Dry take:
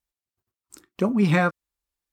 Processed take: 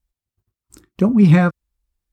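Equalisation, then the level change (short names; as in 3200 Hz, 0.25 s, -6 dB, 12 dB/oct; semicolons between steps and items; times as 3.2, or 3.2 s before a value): low shelf 120 Hz +9.5 dB; low shelf 260 Hz +10 dB; 0.0 dB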